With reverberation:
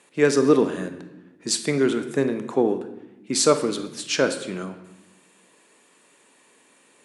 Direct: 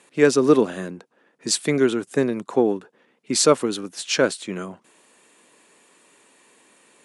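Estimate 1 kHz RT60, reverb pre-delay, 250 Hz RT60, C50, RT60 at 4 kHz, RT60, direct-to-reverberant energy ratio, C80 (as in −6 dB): 0.90 s, 22 ms, 1.5 s, 10.5 dB, 0.80 s, 0.95 s, 8.5 dB, 13.0 dB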